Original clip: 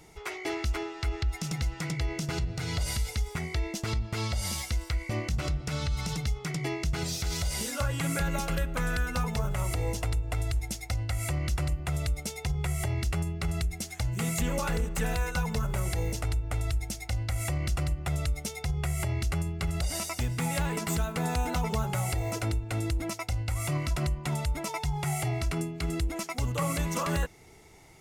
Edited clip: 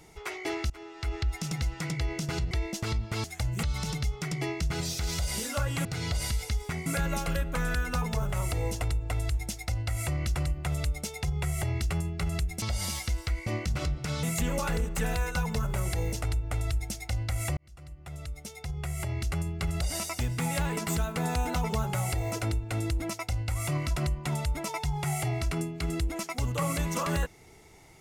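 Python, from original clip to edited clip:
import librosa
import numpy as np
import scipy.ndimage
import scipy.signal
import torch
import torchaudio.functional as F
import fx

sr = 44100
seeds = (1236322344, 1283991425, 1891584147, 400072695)

y = fx.edit(x, sr, fx.fade_in_from(start_s=0.7, length_s=0.47, floor_db=-22.0),
    fx.move(start_s=2.51, length_s=1.01, to_s=8.08),
    fx.swap(start_s=4.25, length_s=1.61, other_s=13.84, other_length_s=0.39),
    fx.fade_in_span(start_s=17.57, length_s=2.02), tone=tone)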